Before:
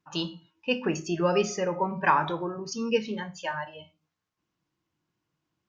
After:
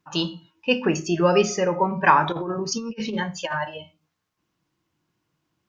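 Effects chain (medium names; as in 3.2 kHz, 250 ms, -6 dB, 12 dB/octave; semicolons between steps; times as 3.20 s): 2.32–3.78 s: compressor with a negative ratio -33 dBFS, ratio -0.5; trim +6 dB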